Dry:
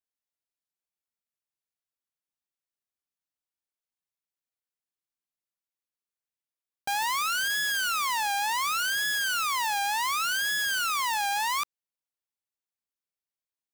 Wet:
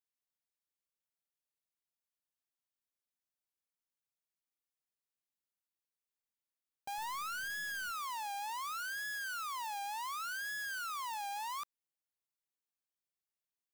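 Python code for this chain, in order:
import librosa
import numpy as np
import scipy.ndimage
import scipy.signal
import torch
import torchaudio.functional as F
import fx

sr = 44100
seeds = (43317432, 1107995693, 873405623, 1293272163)

y = fx.low_shelf(x, sr, hz=290.0, db=11.0, at=(6.98, 7.91))
y = 10.0 ** (-34.0 / 20.0) * np.tanh(y / 10.0 ** (-34.0 / 20.0))
y = fx.high_shelf(y, sr, hz=10000.0, db=3.0)
y = F.gain(torch.from_numpy(y), -5.0).numpy()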